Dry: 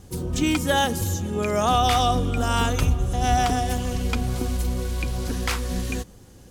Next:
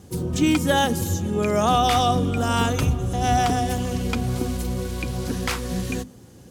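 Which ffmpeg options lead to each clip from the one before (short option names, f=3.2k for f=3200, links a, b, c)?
-af "highpass=110,lowshelf=f=320:g=7,bandreject=f=50:t=h:w=6,bandreject=f=100:t=h:w=6,bandreject=f=150:t=h:w=6,bandreject=f=200:t=h:w=6,bandreject=f=250:t=h:w=6"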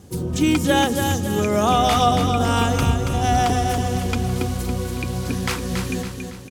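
-af "aecho=1:1:279|558|837|1116|1395|1674:0.501|0.231|0.106|0.0488|0.0224|0.0103,volume=1dB"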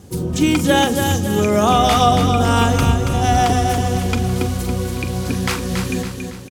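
-filter_complex "[0:a]asplit=2[a][b];[b]adelay=43,volume=-13.5dB[c];[a][c]amix=inputs=2:normalize=0,volume=3dB"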